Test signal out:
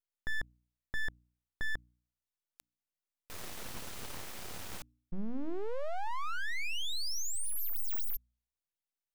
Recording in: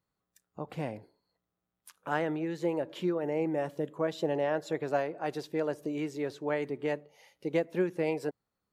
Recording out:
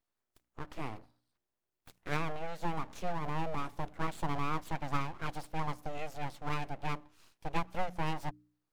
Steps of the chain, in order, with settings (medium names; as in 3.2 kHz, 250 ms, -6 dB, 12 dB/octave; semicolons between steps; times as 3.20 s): full-wave rectifier; de-hum 60.2 Hz, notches 5; trim -1.5 dB